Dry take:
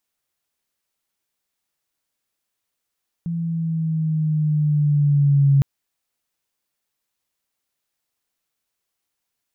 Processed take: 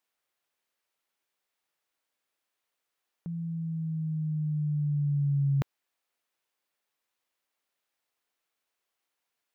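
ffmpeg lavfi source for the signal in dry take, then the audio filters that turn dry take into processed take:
-f lavfi -i "aevalsrc='pow(10,(-11+11*(t/2.36-1))/20)*sin(2*PI*169*2.36/(-3.5*log(2)/12)*(exp(-3.5*log(2)/12*t/2.36)-1))':d=2.36:s=44100"
-af "bass=f=250:g=-12,treble=f=4k:g=-7"

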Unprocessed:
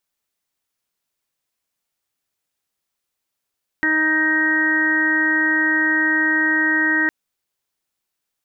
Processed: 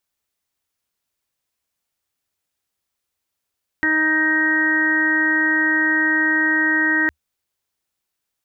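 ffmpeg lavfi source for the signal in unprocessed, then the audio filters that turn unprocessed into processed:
-f lavfi -i "aevalsrc='0.0794*sin(2*PI*313*t)+0.0158*sin(2*PI*626*t)+0.0251*sin(2*PI*939*t)+0.0168*sin(2*PI*1252*t)+0.0841*sin(2*PI*1565*t)+0.141*sin(2*PI*1878*t)':d=3.26:s=44100"
-af "equalizer=f=75:t=o:w=0.5:g=9"

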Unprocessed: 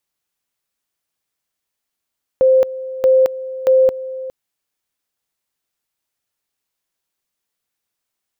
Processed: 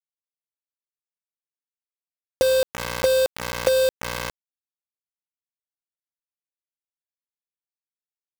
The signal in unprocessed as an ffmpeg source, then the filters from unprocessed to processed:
-f lavfi -i "aevalsrc='pow(10,(-8-16*gte(mod(t,0.63),0.22))/20)*sin(2*PI*522*t)':d=1.89:s=44100"
-af "acompressor=threshold=-16dB:ratio=12,aeval=exprs='val(0)+0.0112*(sin(2*PI*60*n/s)+sin(2*PI*2*60*n/s)/2+sin(2*PI*3*60*n/s)/3+sin(2*PI*4*60*n/s)/4+sin(2*PI*5*60*n/s)/5)':c=same,acrusher=bits=3:mix=0:aa=0.000001"

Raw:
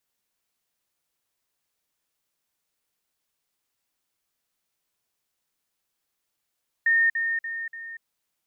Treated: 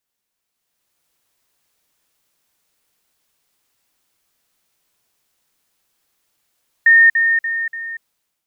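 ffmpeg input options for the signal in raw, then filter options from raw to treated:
-f lavfi -i "aevalsrc='pow(10,(-17-6*floor(t/0.29))/20)*sin(2*PI*1830*t)*clip(min(mod(t,0.29),0.24-mod(t,0.29))/0.005,0,1)':d=1.16:s=44100"
-af "dynaudnorm=f=530:g=3:m=11dB"

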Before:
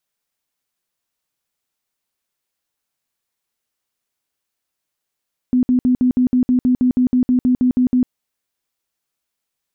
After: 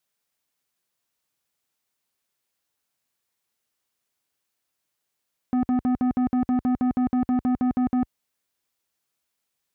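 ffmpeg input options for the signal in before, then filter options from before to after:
-f lavfi -i "aevalsrc='0.282*sin(2*PI*251*mod(t,0.16))*lt(mod(t,0.16),25/251)':d=2.56:s=44100"
-af "highpass=48,asoftclip=type=tanh:threshold=-20dB"

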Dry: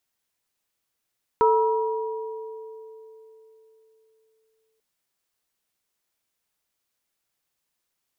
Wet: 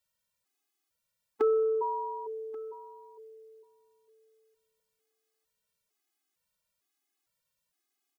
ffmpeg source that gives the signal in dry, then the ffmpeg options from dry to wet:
-f lavfi -i "aevalsrc='0.141*pow(10,-3*t/3.74)*sin(2*PI*442*t)+0.15*pow(10,-3*t/2.31)*sin(2*PI*958*t)+0.0447*pow(10,-3*t/0.85)*sin(2*PI*1310*t)':d=3.39:s=44100"
-af "aecho=1:1:1134:0.0944,afftfilt=real='re*gt(sin(2*PI*1.1*pts/sr)*(1-2*mod(floor(b*sr/1024/220),2)),0)':imag='im*gt(sin(2*PI*1.1*pts/sr)*(1-2*mod(floor(b*sr/1024/220),2)),0)':win_size=1024:overlap=0.75"

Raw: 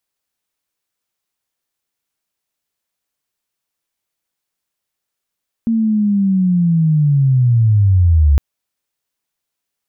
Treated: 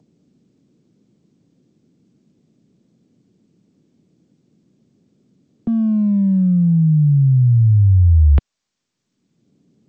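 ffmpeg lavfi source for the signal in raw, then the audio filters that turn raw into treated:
-f lavfi -i "aevalsrc='pow(10,(-12+5*t/2.71)/20)*sin(2*PI*(230*t-162*t*t/(2*2.71)))':d=2.71:s=44100"
-filter_complex "[0:a]acrossover=split=150|250|350[a][b][c][d];[b]acompressor=mode=upward:threshold=-23dB:ratio=2.5[e];[c]volume=32.5dB,asoftclip=hard,volume=-32.5dB[f];[a][e][f][d]amix=inputs=4:normalize=0" -ar 16000 -c:a g722

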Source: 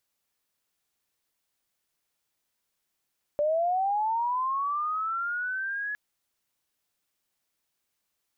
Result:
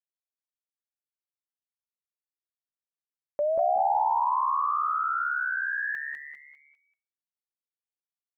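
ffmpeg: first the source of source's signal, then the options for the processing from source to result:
-f lavfi -i "aevalsrc='pow(10,(-22-7.5*t/2.56)/20)*sin(2*PI*(580*t+1120*t*t/(2*2.56)))':d=2.56:s=44100"
-filter_complex "[0:a]asplit=2[a][b];[b]adelay=186,lowpass=f=970:p=1,volume=-3.5dB,asplit=2[c][d];[d]adelay=186,lowpass=f=970:p=1,volume=0.41,asplit=2[e][f];[f]adelay=186,lowpass=f=970:p=1,volume=0.41,asplit=2[g][h];[h]adelay=186,lowpass=f=970:p=1,volume=0.41,asplit=2[i][j];[j]adelay=186,lowpass=f=970:p=1,volume=0.41[k];[c][e][g][i][k]amix=inputs=5:normalize=0[l];[a][l]amix=inputs=2:normalize=0,agate=range=-33dB:threshold=-42dB:ratio=3:detection=peak,asplit=2[m][n];[n]asplit=4[o][p][q][r];[o]adelay=200,afreqshift=150,volume=-5dB[s];[p]adelay=400,afreqshift=300,volume=-13.9dB[t];[q]adelay=600,afreqshift=450,volume=-22.7dB[u];[r]adelay=800,afreqshift=600,volume=-31.6dB[v];[s][t][u][v]amix=inputs=4:normalize=0[w];[m][w]amix=inputs=2:normalize=0"

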